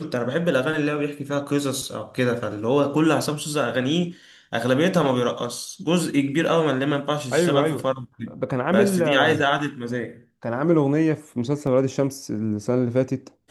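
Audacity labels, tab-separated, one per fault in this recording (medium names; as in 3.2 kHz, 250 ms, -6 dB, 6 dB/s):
11.670000	11.670000	dropout 2.6 ms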